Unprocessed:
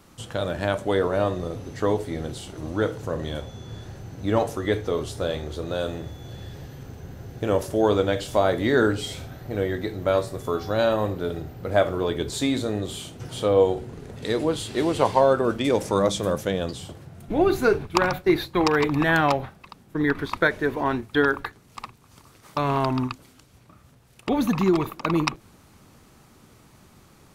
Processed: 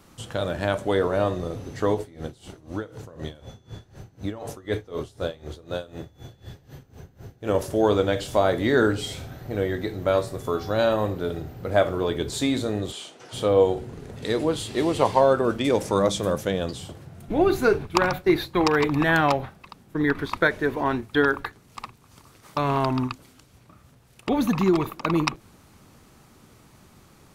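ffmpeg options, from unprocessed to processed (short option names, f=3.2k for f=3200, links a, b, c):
-filter_complex "[0:a]asplit=3[a][b][c];[a]afade=t=out:st=1.94:d=0.02[d];[b]aeval=exprs='val(0)*pow(10,-20*(0.5-0.5*cos(2*PI*4*n/s))/20)':c=same,afade=t=in:st=1.94:d=0.02,afade=t=out:st=7.53:d=0.02[e];[c]afade=t=in:st=7.53:d=0.02[f];[d][e][f]amix=inputs=3:normalize=0,asplit=3[g][h][i];[g]afade=t=out:st=12.91:d=0.02[j];[h]highpass=470,lowpass=7.6k,afade=t=in:st=12.91:d=0.02,afade=t=out:st=13.32:d=0.02[k];[i]afade=t=in:st=13.32:d=0.02[l];[j][k][l]amix=inputs=3:normalize=0,asettb=1/sr,asplit=3[m][n][o];[m]atrim=end=14.634[p];[n]atrim=start=14.63:end=15.11,asetpts=PTS-STARTPTS,afade=t=in:d=0.004:c=qsin,afade=t=out:st=0.476:d=0.004:c=qsin,bandreject=f=1.5k:w=12[q];[o]atrim=start=15.106[r];[p][q]acrossfade=d=0.004:c1=hsin:c2=qsin[s];[s][r]acrossfade=d=0.004:c1=qsin:c2=hsin"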